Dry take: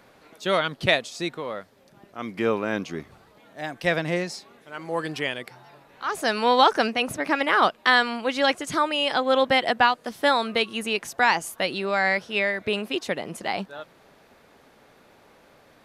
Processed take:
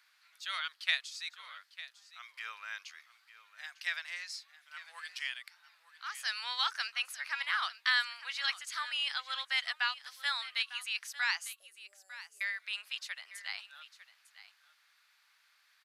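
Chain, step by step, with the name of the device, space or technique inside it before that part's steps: headphones lying on a table (HPF 1400 Hz 24 dB/oct; bell 4600 Hz +5 dB 0.48 oct); 11.53–12.41 elliptic band-stop 500–7800 Hz, stop band 40 dB; echo 0.901 s -15.5 dB; gain -8.5 dB

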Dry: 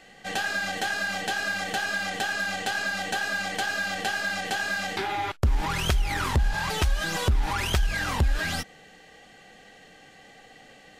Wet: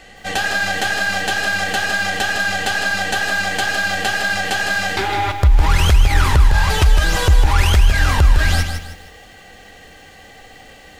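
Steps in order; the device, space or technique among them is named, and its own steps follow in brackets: car stereo with a boomy subwoofer (resonant low shelf 110 Hz +9 dB, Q 1.5; limiter -13.5 dBFS, peak gain reduction 10 dB); lo-fi delay 0.157 s, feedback 35%, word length 9-bit, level -7 dB; gain +8.5 dB

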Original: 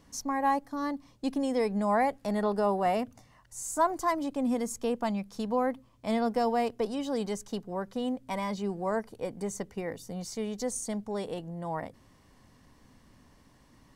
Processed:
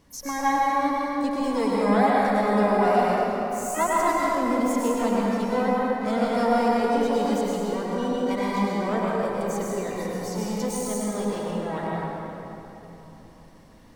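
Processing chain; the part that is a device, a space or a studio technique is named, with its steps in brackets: shimmer-style reverb (harmoniser +12 st -10 dB; reverb RT60 3.4 s, pre-delay 96 ms, DRR -5 dB)

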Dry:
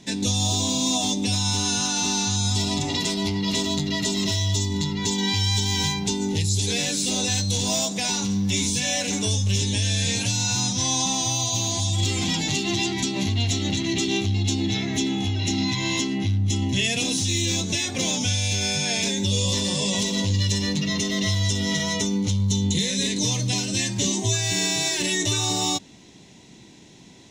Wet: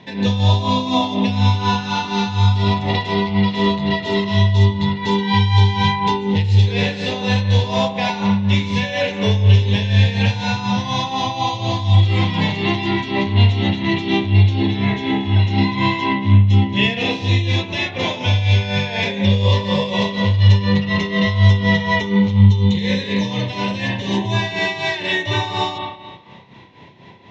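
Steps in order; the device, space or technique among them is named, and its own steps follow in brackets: combo amplifier with spring reverb and tremolo (spring tank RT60 1.4 s, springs 30/35 ms, chirp 80 ms, DRR 1.5 dB; tremolo 4.1 Hz, depth 65%; speaker cabinet 75–3600 Hz, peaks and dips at 96 Hz +5 dB, 210 Hz -4 dB, 300 Hz -7 dB, 520 Hz +6 dB, 970 Hz +9 dB, 1900 Hz +4 dB); gain +6 dB

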